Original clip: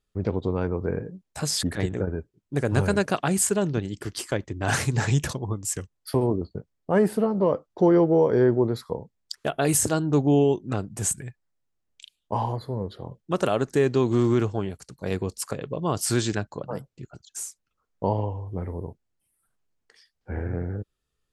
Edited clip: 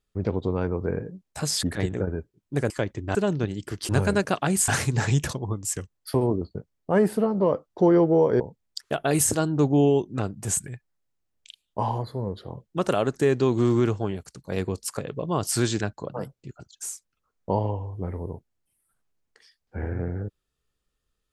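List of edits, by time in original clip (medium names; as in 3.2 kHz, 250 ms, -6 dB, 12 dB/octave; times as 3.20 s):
2.70–3.49 s: swap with 4.23–4.68 s
8.40–8.94 s: delete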